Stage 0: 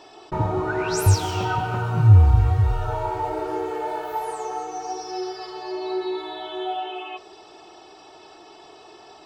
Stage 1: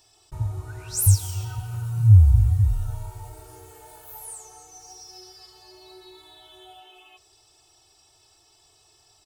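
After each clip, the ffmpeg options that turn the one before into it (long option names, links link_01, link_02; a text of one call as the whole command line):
ffmpeg -i in.wav -af "firequalizer=gain_entry='entry(110,0);entry(180,-23);entry(9000,10)':delay=0.05:min_phase=1" out.wav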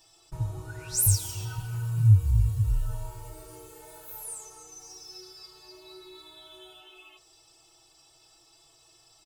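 ffmpeg -i in.wav -af "aecho=1:1:6.1:0.98,volume=-3dB" out.wav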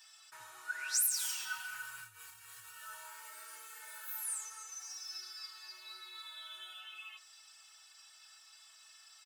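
ffmpeg -i in.wav -af "alimiter=limit=-20dB:level=0:latency=1:release=67,highpass=frequency=1600:width_type=q:width=3.3" out.wav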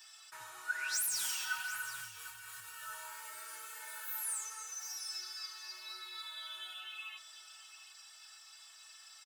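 ffmpeg -i in.wav -filter_complex "[0:a]acrossover=split=140|3000[link_01][link_02][link_03];[link_03]asoftclip=type=tanh:threshold=-35dB[link_04];[link_01][link_02][link_04]amix=inputs=3:normalize=0,aecho=1:1:746:0.2,volume=3dB" out.wav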